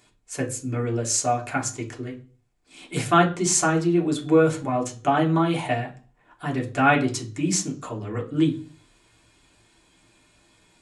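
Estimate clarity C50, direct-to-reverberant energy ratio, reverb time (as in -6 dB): 14.0 dB, -1.5 dB, 0.40 s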